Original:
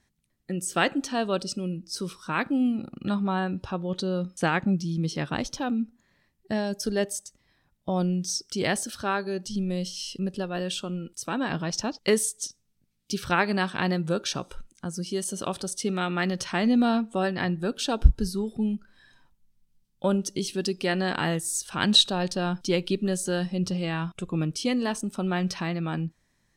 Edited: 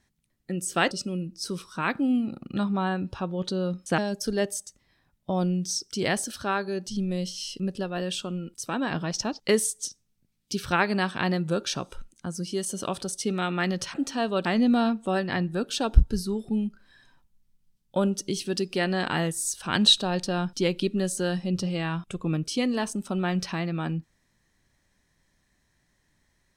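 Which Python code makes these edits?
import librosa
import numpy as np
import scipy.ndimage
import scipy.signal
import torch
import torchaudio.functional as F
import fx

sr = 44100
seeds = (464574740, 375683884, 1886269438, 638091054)

y = fx.edit(x, sr, fx.move(start_s=0.91, length_s=0.51, to_s=16.53),
    fx.cut(start_s=4.49, length_s=2.08), tone=tone)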